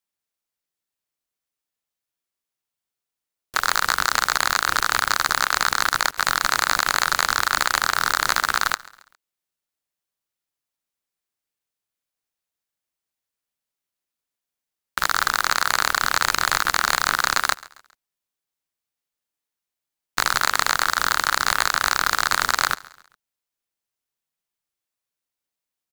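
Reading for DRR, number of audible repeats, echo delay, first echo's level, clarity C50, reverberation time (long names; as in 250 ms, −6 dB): no reverb audible, 2, 136 ms, −21.5 dB, no reverb audible, no reverb audible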